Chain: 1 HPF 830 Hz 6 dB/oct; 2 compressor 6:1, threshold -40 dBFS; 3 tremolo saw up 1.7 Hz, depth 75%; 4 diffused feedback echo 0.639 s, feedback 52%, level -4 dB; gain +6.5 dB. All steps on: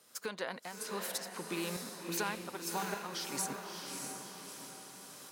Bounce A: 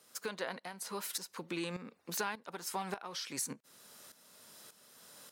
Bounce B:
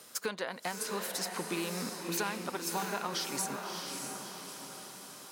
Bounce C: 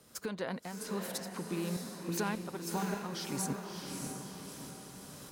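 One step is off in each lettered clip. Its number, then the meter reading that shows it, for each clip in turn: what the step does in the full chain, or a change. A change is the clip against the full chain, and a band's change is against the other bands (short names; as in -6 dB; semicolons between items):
4, echo-to-direct -2.5 dB to none; 3, loudness change +3.0 LU; 1, 125 Hz band +9.5 dB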